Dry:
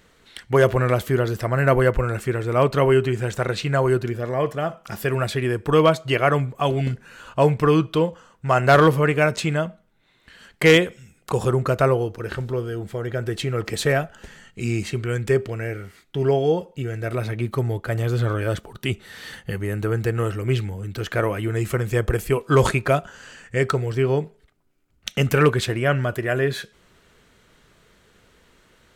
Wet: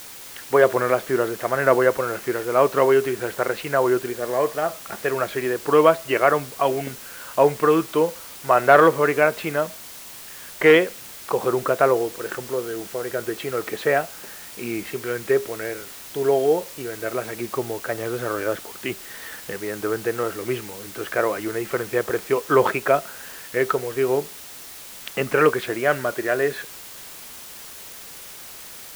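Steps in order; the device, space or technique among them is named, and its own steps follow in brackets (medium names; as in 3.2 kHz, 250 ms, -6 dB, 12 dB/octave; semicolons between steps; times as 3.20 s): wax cylinder (band-pass 340–2100 Hz; wow and flutter; white noise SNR 17 dB); trim +2.5 dB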